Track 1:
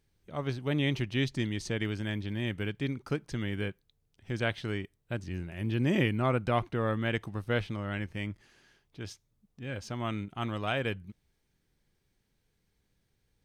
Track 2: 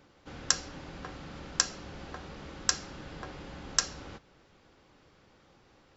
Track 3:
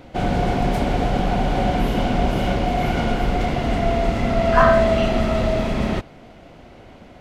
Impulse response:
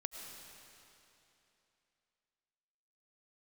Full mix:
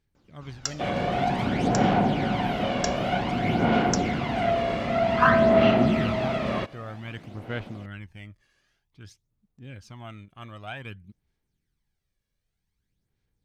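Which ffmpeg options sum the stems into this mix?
-filter_complex "[0:a]volume=-7.5dB[link_01];[1:a]adelay=150,volume=-6.5dB[link_02];[2:a]acrossover=split=4600[link_03][link_04];[link_04]acompressor=threshold=-59dB:ratio=4:attack=1:release=60[link_05];[link_03][link_05]amix=inputs=2:normalize=0,highpass=160,adelay=650,volume=-3dB[link_06];[link_01][link_02][link_06]amix=inputs=3:normalize=0,equalizer=frequency=500:width=1.5:gain=-3,aphaser=in_gain=1:out_gain=1:delay=1.8:decay=0.49:speed=0.53:type=sinusoidal"

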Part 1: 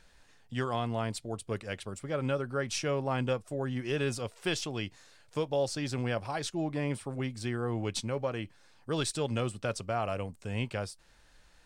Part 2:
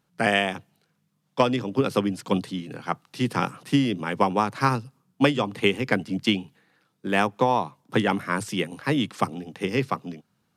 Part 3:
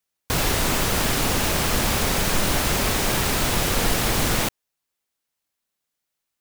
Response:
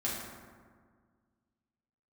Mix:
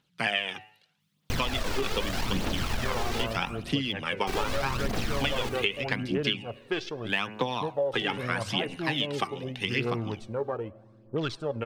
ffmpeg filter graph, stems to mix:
-filter_complex "[0:a]afwtdn=0.0112,bass=frequency=250:gain=-5,treble=frequency=4000:gain=-8,adelay=2250,volume=2dB,asplit=2[link_01][link_02];[link_02]volume=-23dB[link_03];[1:a]equalizer=frequency=3200:width_type=o:width=1.5:gain=14,bandreject=frequency=106.7:width_type=h:width=4,bandreject=frequency=213.4:width_type=h:width=4,bandreject=frequency=320.1:width_type=h:width=4,bandreject=frequency=426.8:width_type=h:width=4,bandreject=frequency=533.5:width_type=h:width=4,bandreject=frequency=640.2:width_type=h:width=4,bandreject=frequency=746.9:width_type=h:width=4,bandreject=frequency=853.6:width_type=h:width=4,bandreject=frequency=960.3:width_type=h:width=4,bandreject=frequency=1067:width_type=h:width=4,bandreject=frequency=1173.7:width_type=h:width=4,bandreject=frequency=1280.4:width_type=h:width=4,bandreject=frequency=1387.1:width_type=h:width=4,bandreject=frequency=1493.8:width_type=h:width=4,bandreject=frequency=1600.5:width_type=h:width=4,bandreject=frequency=1707.2:width_type=h:width=4,bandreject=frequency=1813.9:width_type=h:width=4,bandreject=frequency=1920.6:width_type=h:width=4,bandreject=frequency=2027.3:width_type=h:width=4,bandreject=frequency=2134:width_type=h:width=4,bandreject=frequency=2240.7:width_type=h:width=4,bandreject=frequency=2347.4:width_type=h:width=4,bandreject=frequency=2454.1:width_type=h:width=4,bandreject=frequency=2560.8:width_type=h:width=4,bandreject=frequency=2667.5:width_type=h:width=4,bandreject=frequency=2774.2:width_type=h:width=4,bandreject=frequency=2880.9:width_type=h:width=4,volume=-7dB[link_04];[2:a]aeval=exprs='(tanh(20*val(0)+0.75)-tanh(0.75))/20':channel_layout=same,adelay=1000,volume=-3dB,asplit=3[link_05][link_06][link_07];[link_05]atrim=end=3.24,asetpts=PTS-STARTPTS,afade=type=out:start_time=3.236:duration=0.004:curve=hsin[link_08];[link_06]atrim=start=3.24:end=4.27,asetpts=PTS-STARTPTS,volume=0[link_09];[link_07]atrim=start=4.27,asetpts=PTS-STARTPTS,afade=type=in:duration=0.004:curve=hsin[link_10];[link_08][link_09][link_10]concat=n=3:v=0:a=1,asplit=2[link_11][link_12];[link_12]volume=-9dB[link_13];[3:a]atrim=start_sample=2205[link_14];[link_03][link_13]amix=inputs=2:normalize=0[link_15];[link_15][link_14]afir=irnorm=-1:irlink=0[link_16];[link_01][link_04][link_11][link_16]amix=inputs=4:normalize=0,acrossover=split=5700[link_17][link_18];[link_18]acompressor=threshold=-45dB:ratio=4:attack=1:release=60[link_19];[link_17][link_19]amix=inputs=2:normalize=0,aphaser=in_gain=1:out_gain=1:delay=2.7:decay=0.5:speed=0.81:type=triangular,acompressor=threshold=-24dB:ratio=6"

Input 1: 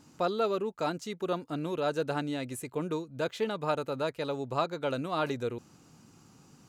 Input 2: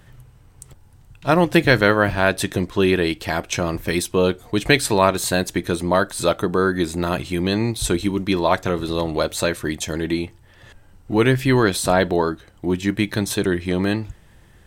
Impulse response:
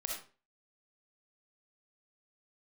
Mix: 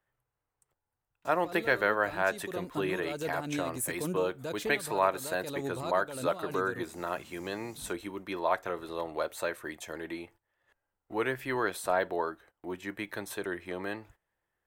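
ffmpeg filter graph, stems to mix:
-filter_complex "[0:a]alimiter=level_in=2.5dB:limit=-24dB:level=0:latency=1:release=32,volume=-2.5dB,tiltshelf=frequency=970:gain=3.5,adelay=1250,volume=2.5dB[link_01];[1:a]acrossover=split=400 2100:gain=0.158 1 0.1[link_02][link_03][link_04];[link_02][link_03][link_04]amix=inputs=3:normalize=0,volume=-8.5dB,asplit=2[link_05][link_06];[link_06]apad=whole_len=349758[link_07];[link_01][link_07]sidechaincompress=threshold=-37dB:ratio=6:attack=28:release=529[link_08];[link_08][link_05]amix=inputs=2:normalize=0,aemphasis=mode=production:type=75fm,agate=range=-16dB:threshold=-56dB:ratio=16:detection=peak"

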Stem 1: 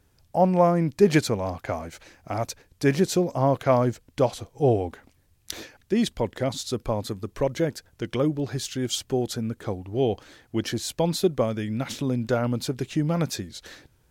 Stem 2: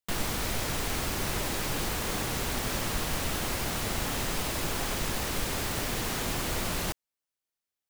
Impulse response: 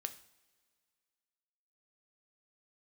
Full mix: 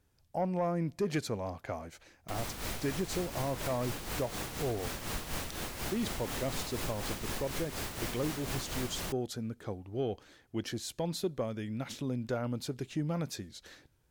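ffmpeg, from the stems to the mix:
-filter_complex "[0:a]asoftclip=type=tanh:threshold=-10dB,volume=-10dB,asplit=2[link_01][link_02];[link_02]volume=-15dB[link_03];[1:a]tremolo=f=4.1:d=0.57,adelay=2200,volume=-4.5dB[link_04];[2:a]atrim=start_sample=2205[link_05];[link_03][link_05]afir=irnorm=-1:irlink=0[link_06];[link_01][link_04][link_06]amix=inputs=3:normalize=0,alimiter=limit=-24dB:level=0:latency=1:release=208"

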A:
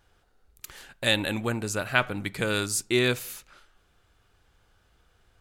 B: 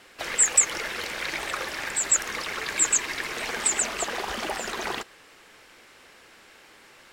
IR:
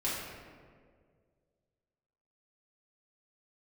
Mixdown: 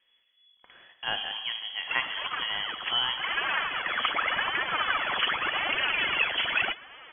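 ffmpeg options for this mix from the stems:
-filter_complex "[0:a]volume=-7.5dB,asplit=3[link_01][link_02][link_03];[link_02]volume=-10.5dB[link_04];[1:a]asoftclip=type=tanh:threshold=-21dB,aphaser=in_gain=1:out_gain=1:delay=4:decay=0.69:speed=0.85:type=triangular,adelay=1700,volume=3dB[link_05];[link_03]apad=whole_len=389387[link_06];[link_05][link_06]sidechaincompress=threshold=-47dB:ratio=5:attack=41:release=136[link_07];[2:a]atrim=start_sample=2205[link_08];[link_04][link_08]afir=irnorm=-1:irlink=0[link_09];[link_01][link_07][link_09]amix=inputs=3:normalize=0,lowpass=frequency=2900:width_type=q:width=0.5098,lowpass=frequency=2900:width_type=q:width=0.6013,lowpass=frequency=2900:width_type=q:width=0.9,lowpass=frequency=2900:width_type=q:width=2.563,afreqshift=-3400"

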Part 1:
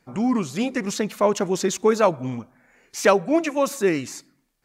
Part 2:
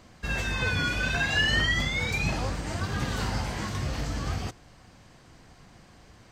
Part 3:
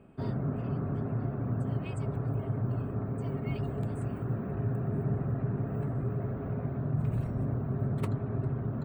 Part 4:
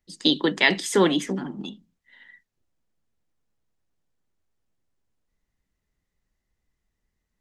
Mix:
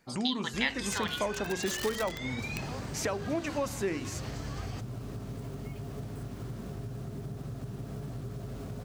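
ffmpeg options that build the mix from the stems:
ffmpeg -i stem1.wav -i stem2.wav -i stem3.wav -i stem4.wav -filter_complex "[0:a]bandreject=frequency=45.41:width_type=h:width=4,bandreject=frequency=90.82:width_type=h:width=4,bandreject=frequency=136.23:width_type=h:width=4,bandreject=frequency=181.64:width_type=h:width=4,bandreject=frequency=227.05:width_type=h:width=4,bandreject=frequency=272.46:width_type=h:width=4,bandreject=frequency=317.87:width_type=h:width=4,bandreject=frequency=363.28:width_type=h:width=4,bandreject=frequency=408.69:width_type=h:width=4,bandreject=frequency=454.1:width_type=h:width=4,bandreject=frequency=499.51:width_type=h:width=4,alimiter=limit=-9.5dB:level=0:latency=1:release=427,volume=-2dB[link_01];[1:a]lowshelf=frequency=77:gain=-3.5,aeval=exprs='(mod(7.94*val(0)+1,2)-1)/7.94':channel_layout=same,adelay=300,volume=-5.5dB[link_02];[2:a]acrusher=bits=7:mix=0:aa=0.000001,aeval=exprs='val(0)+0.01*(sin(2*PI*50*n/s)+sin(2*PI*2*50*n/s)/2+sin(2*PI*3*50*n/s)/3+sin(2*PI*4*50*n/s)/4+sin(2*PI*5*50*n/s)/5)':channel_layout=same,acompressor=threshold=-32dB:ratio=6,adelay=2200,volume=-2.5dB[link_03];[3:a]highpass=frequency=800:width=0.5412,highpass=frequency=800:width=1.3066,volume=0dB[link_04];[link_01][link_02][link_03][link_04]amix=inputs=4:normalize=0,acompressor=threshold=-35dB:ratio=2" out.wav

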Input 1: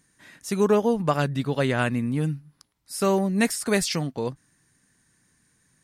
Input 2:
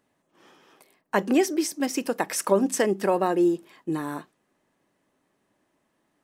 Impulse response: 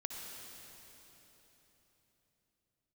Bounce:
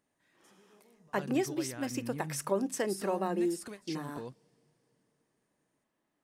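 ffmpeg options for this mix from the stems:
-filter_complex "[0:a]acompressor=threshold=-31dB:ratio=6,alimiter=level_in=9dB:limit=-24dB:level=0:latency=1:release=267,volume=-9dB,volume=-1dB,asplit=2[link_01][link_02];[link_02]volume=-22dB[link_03];[1:a]volume=-9.5dB,asplit=2[link_04][link_05];[link_05]apad=whole_len=257489[link_06];[link_01][link_06]sidechaingate=range=-33dB:threshold=-57dB:ratio=16:detection=peak[link_07];[2:a]atrim=start_sample=2205[link_08];[link_03][link_08]afir=irnorm=-1:irlink=0[link_09];[link_07][link_04][link_09]amix=inputs=3:normalize=0"

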